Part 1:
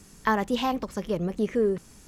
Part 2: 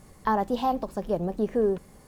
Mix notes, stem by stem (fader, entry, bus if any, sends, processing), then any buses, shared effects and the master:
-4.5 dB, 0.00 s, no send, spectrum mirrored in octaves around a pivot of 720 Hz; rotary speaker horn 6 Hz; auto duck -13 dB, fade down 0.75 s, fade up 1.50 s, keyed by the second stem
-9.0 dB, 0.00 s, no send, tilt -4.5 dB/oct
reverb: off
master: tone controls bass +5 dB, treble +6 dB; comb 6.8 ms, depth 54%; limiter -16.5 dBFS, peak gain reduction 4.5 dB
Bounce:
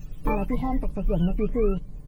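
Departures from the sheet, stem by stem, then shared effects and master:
stem 1: missing rotary speaker horn 6 Hz; master: missing limiter -16.5 dBFS, peak gain reduction 4.5 dB

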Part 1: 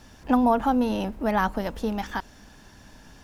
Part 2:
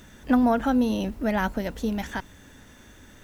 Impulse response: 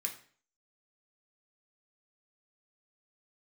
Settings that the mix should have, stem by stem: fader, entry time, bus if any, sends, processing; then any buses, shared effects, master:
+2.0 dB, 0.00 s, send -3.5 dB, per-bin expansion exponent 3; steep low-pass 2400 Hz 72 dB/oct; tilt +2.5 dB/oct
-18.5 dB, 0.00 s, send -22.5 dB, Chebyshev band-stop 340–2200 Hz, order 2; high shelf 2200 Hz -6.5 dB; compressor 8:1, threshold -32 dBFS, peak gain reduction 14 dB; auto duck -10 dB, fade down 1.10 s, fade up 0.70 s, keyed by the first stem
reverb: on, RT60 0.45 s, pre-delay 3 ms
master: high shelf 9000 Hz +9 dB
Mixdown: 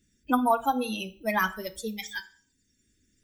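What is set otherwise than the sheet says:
stem 1: missing steep low-pass 2400 Hz 72 dB/oct; master: missing high shelf 9000 Hz +9 dB

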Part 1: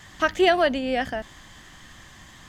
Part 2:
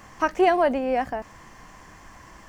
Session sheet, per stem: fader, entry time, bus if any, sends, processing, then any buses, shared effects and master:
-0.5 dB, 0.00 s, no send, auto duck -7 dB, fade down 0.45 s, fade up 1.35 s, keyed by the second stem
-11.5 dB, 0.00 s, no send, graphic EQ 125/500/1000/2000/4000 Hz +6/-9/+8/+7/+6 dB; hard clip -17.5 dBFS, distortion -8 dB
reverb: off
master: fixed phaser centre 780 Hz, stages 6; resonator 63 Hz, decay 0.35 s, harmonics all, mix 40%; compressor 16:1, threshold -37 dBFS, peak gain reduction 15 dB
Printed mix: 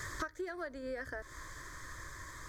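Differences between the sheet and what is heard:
stem 1 -0.5 dB -> +8.5 dB; master: missing resonator 63 Hz, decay 0.35 s, harmonics all, mix 40%

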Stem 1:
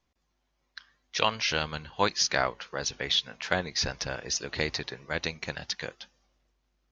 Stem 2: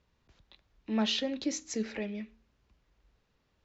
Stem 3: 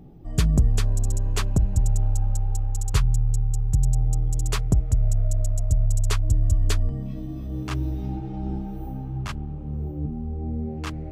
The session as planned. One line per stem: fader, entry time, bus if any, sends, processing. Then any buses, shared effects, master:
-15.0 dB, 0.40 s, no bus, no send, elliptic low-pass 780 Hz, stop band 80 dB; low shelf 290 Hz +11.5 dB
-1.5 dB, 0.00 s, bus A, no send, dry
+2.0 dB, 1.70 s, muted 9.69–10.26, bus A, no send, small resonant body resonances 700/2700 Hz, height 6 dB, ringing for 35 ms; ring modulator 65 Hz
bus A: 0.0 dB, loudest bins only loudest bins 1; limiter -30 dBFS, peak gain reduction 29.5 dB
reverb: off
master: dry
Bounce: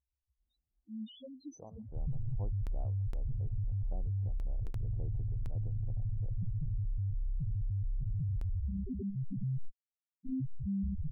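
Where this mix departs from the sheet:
stem 1 -15.0 dB -> -23.0 dB; stem 2 -1.5 dB -> -8.0 dB; stem 3 +2.0 dB -> +10.0 dB

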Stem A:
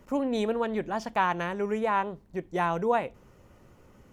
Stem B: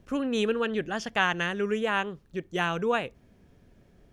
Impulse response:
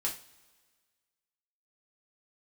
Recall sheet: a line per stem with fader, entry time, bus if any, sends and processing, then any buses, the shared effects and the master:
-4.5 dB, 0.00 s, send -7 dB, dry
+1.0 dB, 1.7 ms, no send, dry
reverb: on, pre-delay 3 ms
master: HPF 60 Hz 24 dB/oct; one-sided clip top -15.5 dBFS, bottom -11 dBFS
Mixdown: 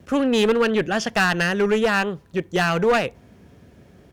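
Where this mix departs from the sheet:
stem A -4.5 dB -> -11.5 dB; stem B +1.0 dB -> +10.0 dB

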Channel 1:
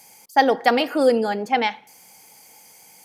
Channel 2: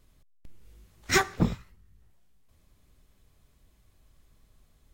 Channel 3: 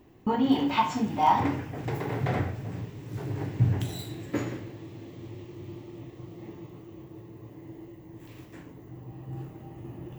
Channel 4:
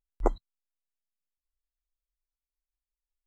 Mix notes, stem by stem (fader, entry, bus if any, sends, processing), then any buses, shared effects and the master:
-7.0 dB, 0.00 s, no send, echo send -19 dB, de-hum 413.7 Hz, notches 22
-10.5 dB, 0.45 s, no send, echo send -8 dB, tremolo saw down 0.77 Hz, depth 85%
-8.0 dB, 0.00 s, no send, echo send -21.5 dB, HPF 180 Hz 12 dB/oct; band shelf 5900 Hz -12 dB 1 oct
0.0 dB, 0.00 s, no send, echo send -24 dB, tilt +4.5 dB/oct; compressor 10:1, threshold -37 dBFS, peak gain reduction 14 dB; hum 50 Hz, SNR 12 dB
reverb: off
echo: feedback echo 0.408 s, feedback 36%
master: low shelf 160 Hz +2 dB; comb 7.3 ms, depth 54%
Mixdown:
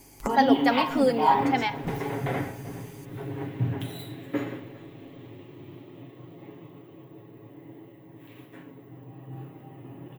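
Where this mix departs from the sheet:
stem 3 -8.0 dB -> -0.5 dB; stem 4 0.0 dB -> +7.5 dB

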